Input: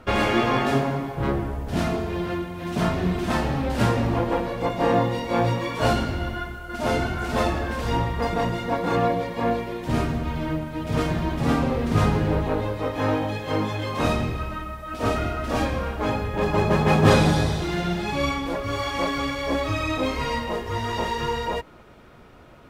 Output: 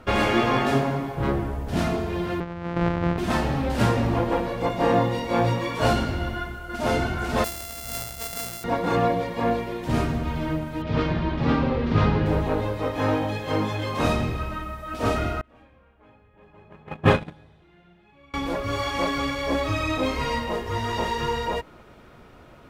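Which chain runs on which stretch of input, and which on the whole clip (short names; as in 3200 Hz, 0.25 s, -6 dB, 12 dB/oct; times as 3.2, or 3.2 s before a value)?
2.4–3.18 sample sorter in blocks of 256 samples + LPF 1900 Hz
7.44–8.64 sample sorter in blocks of 64 samples + pre-emphasis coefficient 0.8
10.82–12.26 LPF 4600 Hz 24 dB/oct + notch 710 Hz, Q 16
15.41–18.34 gate -15 dBFS, range -30 dB + resonant high shelf 3800 Hz -9.5 dB, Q 1.5
whole clip: dry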